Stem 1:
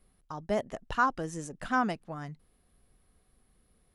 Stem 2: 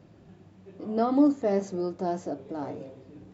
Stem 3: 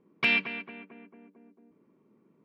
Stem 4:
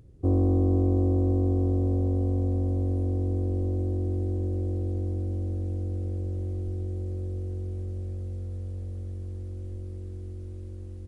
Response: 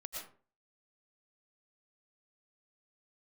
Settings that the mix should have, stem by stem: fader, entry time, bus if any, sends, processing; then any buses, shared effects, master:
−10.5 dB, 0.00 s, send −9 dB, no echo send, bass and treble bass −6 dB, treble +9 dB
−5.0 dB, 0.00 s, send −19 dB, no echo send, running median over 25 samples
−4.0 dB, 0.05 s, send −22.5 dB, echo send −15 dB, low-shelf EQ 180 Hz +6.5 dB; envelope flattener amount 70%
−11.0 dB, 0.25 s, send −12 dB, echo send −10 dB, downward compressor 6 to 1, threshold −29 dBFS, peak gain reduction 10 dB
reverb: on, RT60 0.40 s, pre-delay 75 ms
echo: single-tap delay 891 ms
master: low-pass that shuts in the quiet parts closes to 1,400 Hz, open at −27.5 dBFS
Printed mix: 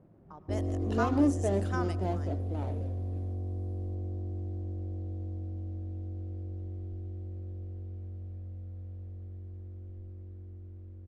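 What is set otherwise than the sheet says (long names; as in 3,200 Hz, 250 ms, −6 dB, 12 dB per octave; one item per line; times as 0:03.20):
stem 3: muted
stem 4: missing downward compressor 6 to 1, threshold −29 dBFS, peak gain reduction 10 dB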